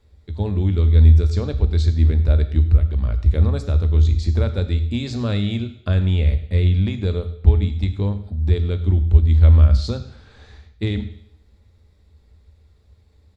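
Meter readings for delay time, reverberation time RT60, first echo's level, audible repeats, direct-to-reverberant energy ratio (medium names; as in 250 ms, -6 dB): 100 ms, 0.65 s, -18.0 dB, 1, 8.5 dB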